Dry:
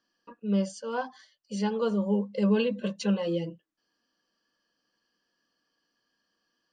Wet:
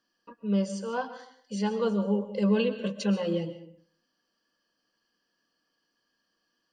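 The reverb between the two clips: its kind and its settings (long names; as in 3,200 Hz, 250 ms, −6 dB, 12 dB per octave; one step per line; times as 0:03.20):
comb and all-pass reverb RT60 0.6 s, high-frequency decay 0.7×, pre-delay 90 ms, DRR 11 dB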